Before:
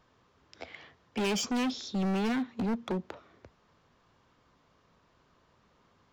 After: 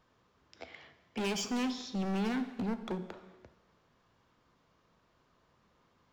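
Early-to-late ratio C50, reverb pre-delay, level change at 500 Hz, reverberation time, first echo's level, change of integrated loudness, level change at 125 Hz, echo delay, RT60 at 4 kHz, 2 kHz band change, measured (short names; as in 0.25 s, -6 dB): 12.0 dB, 4 ms, -4.0 dB, 1.2 s, none, -3.5 dB, -3.5 dB, none, 1.1 s, -3.5 dB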